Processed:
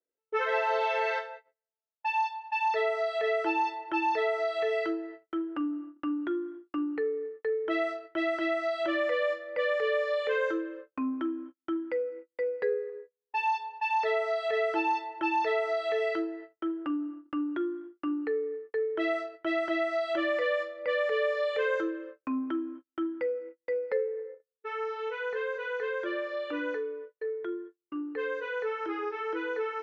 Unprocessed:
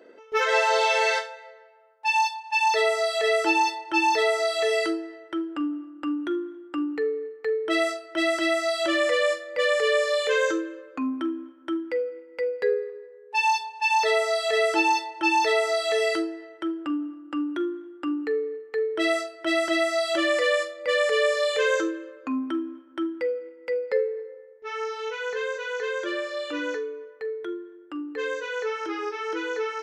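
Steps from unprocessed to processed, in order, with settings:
low-pass filter 2,300 Hz 12 dB per octave
noise gate −41 dBFS, range −42 dB
downward compressor 1.5 to 1, threshold −30 dBFS, peak gain reduction 4.5 dB
level −1.5 dB

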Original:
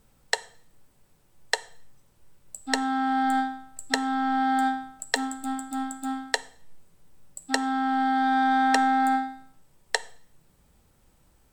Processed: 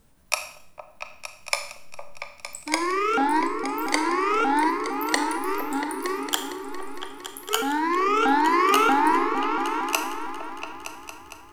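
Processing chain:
pitch shifter swept by a sawtooth +10 semitones, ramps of 635 ms
echo whose low-pass opens from repeat to repeat 229 ms, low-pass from 200 Hz, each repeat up 2 octaves, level −3 dB
four-comb reverb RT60 0.59 s, combs from 26 ms, DRR 8.5 dB
level +2 dB

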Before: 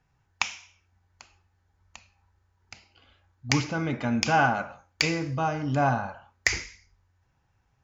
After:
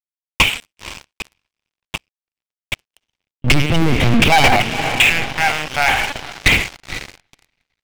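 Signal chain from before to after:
lower of the sound and its delayed copy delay 0.33 ms
in parallel at 0 dB: downward compressor 10 to 1, threshold −34 dBFS, peak gain reduction 17 dB
0:04.60–0:06.14: on the sum: Bessel high-pass filter 1,300 Hz, order 2
linear-prediction vocoder at 8 kHz pitch kept
on a send: feedback delay with all-pass diffusion 498 ms, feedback 46%, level −14.5 dB
on the sum: dead-zone distortion −50.5 dBFS
parametric band 2,800 Hz +4.5 dB 1.7 octaves
leveller curve on the samples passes 5

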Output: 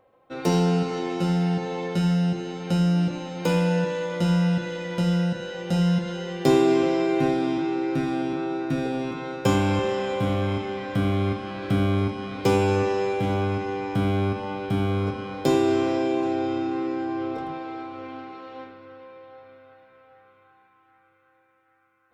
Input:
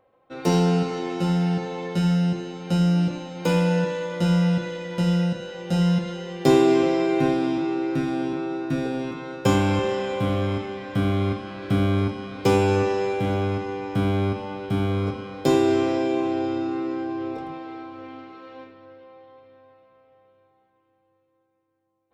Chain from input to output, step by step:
in parallel at −2 dB: downward compressor, threshold −29 dBFS, peak gain reduction 16 dB
on the sum: feedback echo with a band-pass in the loop 776 ms, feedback 73%, band-pass 1,600 Hz, level −14.5 dB
level −3 dB

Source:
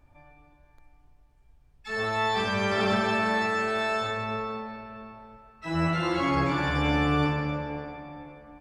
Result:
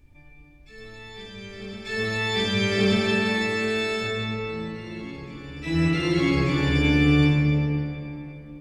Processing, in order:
flat-topped bell 940 Hz −13 dB
backwards echo 1,188 ms −16.5 dB
convolution reverb RT60 1.5 s, pre-delay 100 ms, DRR 7 dB
level +5 dB

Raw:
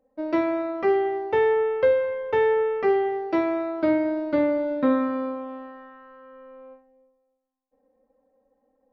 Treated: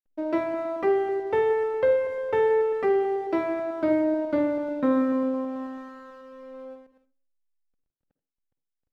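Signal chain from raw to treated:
delay that plays each chunk backwards 109 ms, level −13 dB
high-shelf EQ 2,200 Hz −4 dB
in parallel at +1 dB: downward compressor, threshold −33 dBFS, peak gain reduction 16 dB
on the sum: slack as between gear wheels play −46 dBFS
tape delay 97 ms, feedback 43%, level −24 dB, low-pass 1,200 Hz
on a send at −13 dB: convolution reverb RT60 0.30 s, pre-delay 47 ms
on the sum: level −4 dB

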